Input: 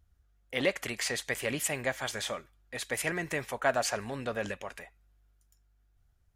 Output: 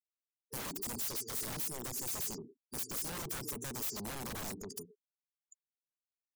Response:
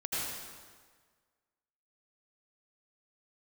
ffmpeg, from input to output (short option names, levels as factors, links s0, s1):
-filter_complex "[0:a]highpass=170,bandreject=f=60:t=h:w=6,bandreject=f=120:t=h:w=6,bandreject=f=180:t=h:w=6,bandreject=f=240:t=h:w=6,bandreject=f=300:t=h:w=6,asplit=2[s0][s1];[s1]adelay=110,highpass=300,lowpass=3400,asoftclip=type=hard:threshold=0.0841,volume=0.224[s2];[s0][s2]amix=inputs=2:normalize=0,afftfilt=real='re*(1-between(b*sr/4096,460,4500))':imag='im*(1-between(b*sr/4096,460,4500))':win_size=4096:overlap=0.75,acompressor=threshold=0.00794:ratio=3,aeval=exprs='(mod(133*val(0)+1,2)-1)/133':c=same,afftfilt=real='re*gte(hypot(re,im),0.00158)':imag='im*gte(hypot(re,im),0.00158)':win_size=1024:overlap=0.75,equalizer=f=920:t=o:w=2.9:g=-8.5,aeval=exprs='0.0112*sin(PI/2*2.82*val(0)/0.0112)':c=same,highshelf=f=9000:g=8"